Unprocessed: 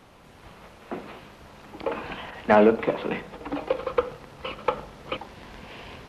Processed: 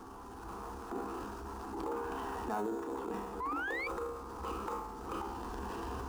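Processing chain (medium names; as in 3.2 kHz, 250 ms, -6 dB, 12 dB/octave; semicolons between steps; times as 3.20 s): in parallel at -11 dB: sample-and-hold 12×; on the sum: peaking EQ 3.7 kHz -12.5 dB 0.78 oct; static phaser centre 580 Hz, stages 6; feedback comb 67 Hz, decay 0.66 s, harmonics all, mix 80%; painted sound rise, 3.40–3.88 s, 970–2400 Hz -39 dBFS; compression 8:1, threshold -49 dBFS, peak gain reduction 24 dB; transient shaper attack -7 dB, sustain +7 dB; sliding maximum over 3 samples; trim +14.5 dB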